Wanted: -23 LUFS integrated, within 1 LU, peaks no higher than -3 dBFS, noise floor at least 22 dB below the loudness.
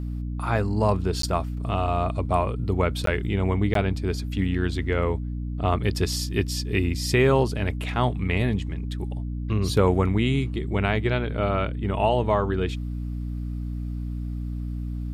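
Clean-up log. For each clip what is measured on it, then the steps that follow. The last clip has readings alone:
dropouts 3; longest dropout 13 ms; hum 60 Hz; harmonics up to 300 Hz; hum level -27 dBFS; loudness -25.5 LUFS; peak -8.5 dBFS; loudness target -23.0 LUFS
-> interpolate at 1.22/3.06/3.74, 13 ms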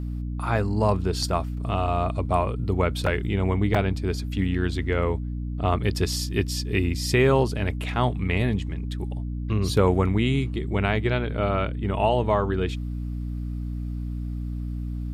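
dropouts 0; hum 60 Hz; harmonics up to 300 Hz; hum level -27 dBFS
-> de-hum 60 Hz, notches 5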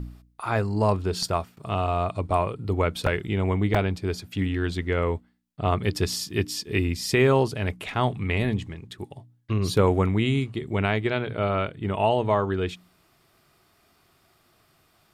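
hum none; loudness -25.5 LUFS; peak -8.5 dBFS; loudness target -23.0 LUFS
-> gain +2.5 dB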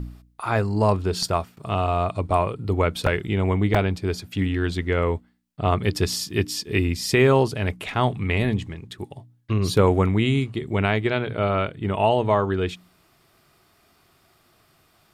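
loudness -23.0 LUFS; peak -6.0 dBFS; noise floor -61 dBFS

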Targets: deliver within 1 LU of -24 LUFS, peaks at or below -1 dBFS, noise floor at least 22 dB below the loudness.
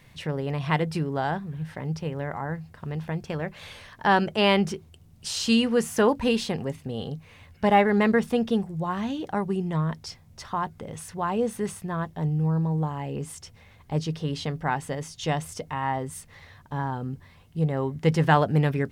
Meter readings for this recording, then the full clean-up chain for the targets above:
loudness -26.5 LUFS; peak -6.0 dBFS; loudness target -24.0 LUFS
-> gain +2.5 dB

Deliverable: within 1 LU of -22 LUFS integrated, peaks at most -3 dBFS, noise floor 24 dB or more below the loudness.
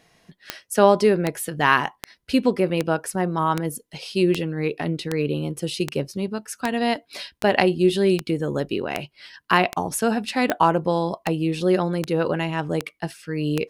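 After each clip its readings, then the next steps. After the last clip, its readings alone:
clicks 18; loudness -23.0 LUFS; peak -2.0 dBFS; loudness target -22.0 LUFS
-> de-click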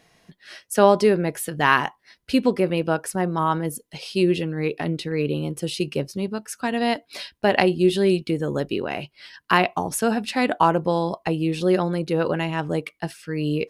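clicks 0; loudness -23.0 LUFS; peak -2.0 dBFS; loudness target -22.0 LUFS
-> gain +1 dB; limiter -3 dBFS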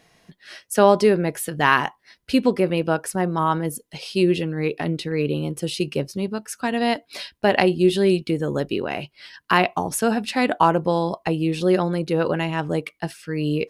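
loudness -22.0 LUFS; peak -3.0 dBFS; noise floor -67 dBFS

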